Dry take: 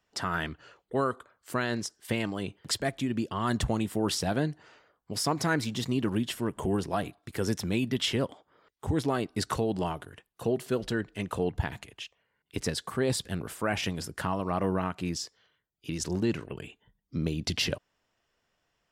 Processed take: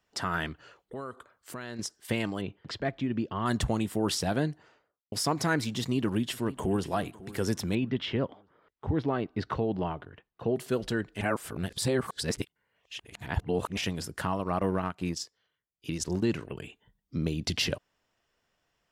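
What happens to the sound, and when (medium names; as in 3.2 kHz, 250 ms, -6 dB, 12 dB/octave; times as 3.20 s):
0.52–1.79 s: compression 2.5:1, threshold -40 dBFS
2.41–3.46 s: distance through air 220 m
4.43–5.12 s: studio fade out
5.78–6.86 s: echo throw 550 ms, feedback 40%, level -18 dB
7.75–10.56 s: distance through air 300 m
11.21–13.77 s: reverse
14.37–16.31 s: transient shaper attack +1 dB, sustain -9 dB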